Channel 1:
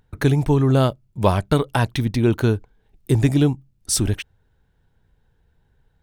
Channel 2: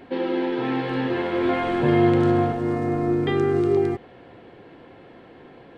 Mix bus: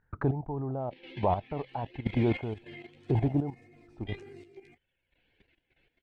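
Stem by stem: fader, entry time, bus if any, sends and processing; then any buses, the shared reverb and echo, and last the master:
-5.5 dB, 0.00 s, no send, touch-sensitive low-pass 790–1700 Hz down, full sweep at -22.5 dBFS
-12.0 dB, 0.80 s, no send, reverb removal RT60 1.2 s; resonant high shelf 1.7 kHz +10.5 dB, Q 3; flange 1.7 Hz, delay 7.2 ms, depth 9.2 ms, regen +12%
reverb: none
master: level held to a coarse grid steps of 12 dB; square tremolo 0.97 Hz, depth 65%, duty 30%

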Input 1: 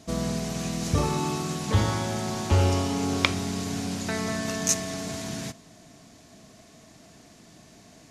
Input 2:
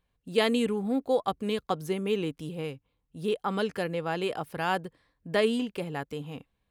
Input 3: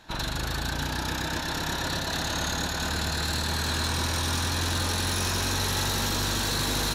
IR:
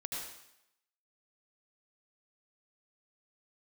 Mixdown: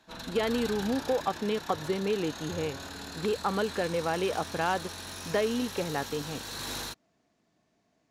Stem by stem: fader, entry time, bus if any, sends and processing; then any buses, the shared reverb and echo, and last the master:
-17.0 dB, 0.00 s, bus A, no send, none
+1.5 dB, 0.00 s, bus A, no send, waveshaping leveller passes 1
-10.0 dB, 0.00 s, no bus, no send, level rider gain up to 10.5 dB; auto duck -13 dB, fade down 1.50 s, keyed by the second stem
bus A: 0.0 dB, low-pass 2.1 kHz 6 dB/octave; compression, threshold -23 dBFS, peak gain reduction 7.5 dB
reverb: none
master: bass shelf 200 Hz -8.5 dB

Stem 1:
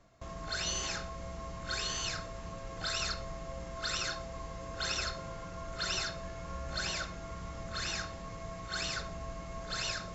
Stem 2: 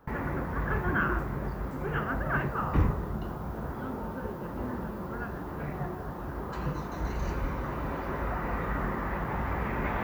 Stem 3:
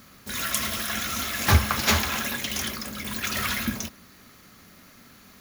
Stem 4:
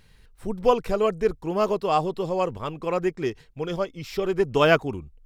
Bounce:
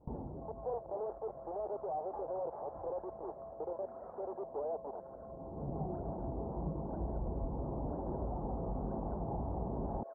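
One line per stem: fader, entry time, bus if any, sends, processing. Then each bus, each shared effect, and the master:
+2.0 dB, 0.15 s, bus A, no send, rotary cabinet horn 6 Hz
-1.5 dB, 0.00 s, no bus, no send, compression 3:1, threshold -32 dBFS, peak gain reduction 10 dB; vibrato with a chosen wave saw down 3.3 Hz, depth 160 cents; auto duck -21 dB, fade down 0.90 s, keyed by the fourth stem
-14.0 dB, 0.65 s, bus A, no send, level rider gain up to 11 dB
-1.5 dB, 0.00 s, bus A, no send, Schmitt trigger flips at -28.5 dBFS
bus A: 0.0 dB, high-pass 510 Hz 24 dB/octave; peak limiter -24 dBFS, peak gain reduction 8.5 dB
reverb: none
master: elliptic low-pass 830 Hz, stop band 70 dB

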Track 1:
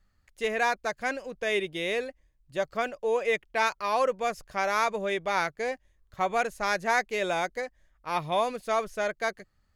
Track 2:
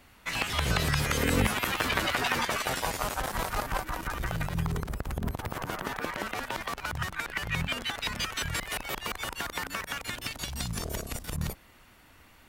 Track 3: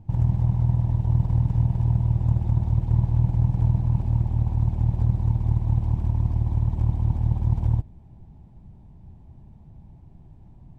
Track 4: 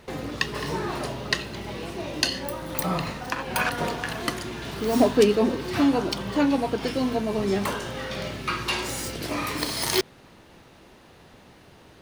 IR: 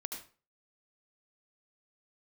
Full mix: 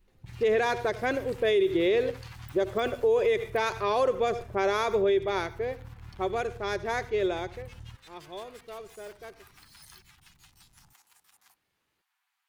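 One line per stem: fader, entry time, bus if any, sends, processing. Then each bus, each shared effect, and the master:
4.73 s -0.5 dB -> 5.52 s -9 dB -> 7.32 s -9 dB -> 7.81 s -20.5 dB, 0.00 s, send -10 dB, level-controlled noise filter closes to 350 Hz, open at -22 dBFS; small resonant body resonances 380/3400 Hz, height 16 dB, ringing for 35 ms
-17.5 dB, 0.00 s, no send, comb filter that takes the minimum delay 9.2 ms; ring modulator 210 Hz; steep high-pass 740 Hz 96 dB/octave
-17.0 dB, 0.15 s, no send, compression 4:1, threshold -25 dBFS, peak gain reduction 9.5 dB
-15.0 dB, 0.00 s, send -14.5 dB, resonances exaggerated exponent 1.5; compression 2:1, threshold -41 dBFS, peak gain reduction 15 dB; pre-emphasis filter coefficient 0.9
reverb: on, RT60 0.40 s, pre-delay 69 ms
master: peak limiter -17 dBFS, peak gain reduction 11 dB

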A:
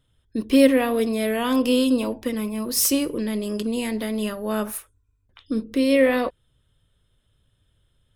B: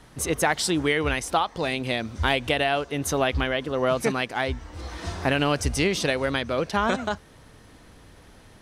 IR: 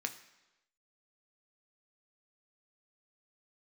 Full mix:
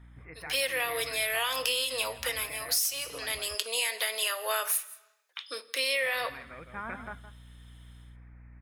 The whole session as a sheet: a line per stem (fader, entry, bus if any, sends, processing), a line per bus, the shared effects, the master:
+0.5 dB, 0.00 s, send -3 dB, echo send -21.5 dB, steep high-pass 470 Hz 36 dB/octave; level rider gain up to 14 dB
-0.5 dB, 0.00 s, muted 3.39–5.98 s, send -11 dB, echo send -10.5 dB, steep low-pass 2.4 kHz 96 dB/octave; hum 60 Hz, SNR 11 dB; auto duck -12 dB, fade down 0.20 s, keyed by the first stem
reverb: on, RT60 1.0 s, pre-delay 3 ms
echo: delay 165 ms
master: amplifier tone stack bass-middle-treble 5-5-5; compression 12:1, threshold -25 dBFS, peak gain reduction 15 dB

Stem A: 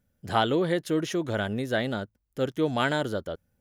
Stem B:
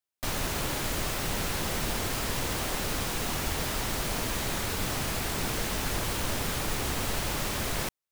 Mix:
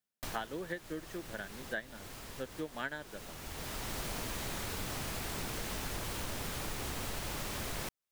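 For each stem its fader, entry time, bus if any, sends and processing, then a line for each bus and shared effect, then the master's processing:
-3.0 dB, 0.00 s, no send, high-pass 140 Hz 24 dB/octave; peaking EQ 1.7 kHz +13.5 dB 0.27 oct; upward expansion 2.5:1, over -34 dBFS
-0.5 dB, 0.00 s, no send, auto duck -16 dB, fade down 0.65 s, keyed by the first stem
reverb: none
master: compression 3:1, threshold -38 dBFS, peak gain reduction 12.5 dB

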